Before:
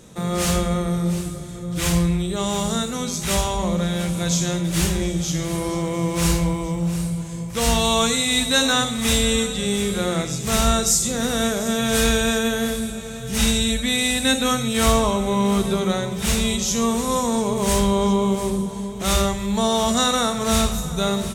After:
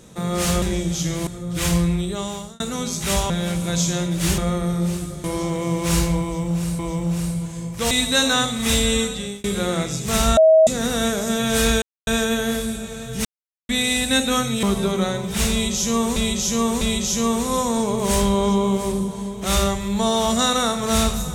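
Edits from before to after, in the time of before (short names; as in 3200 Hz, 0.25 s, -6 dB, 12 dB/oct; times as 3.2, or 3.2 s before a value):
0.62–1.48 swap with 4.91–5.56
2.24–2.81 fade out
3.51–3.83 cut
6.55–7.11 loop, 2 plays
7.67–8.3 cut
9.31–9.83 fade out equal-power
10.76–11.06 bleep 638 Hz -8.5 dBFS
12.21 insert silence 0.25 s
13.39–13.83 mute
14.77–15.51 cut
16.39–17.04 loop, 3 plays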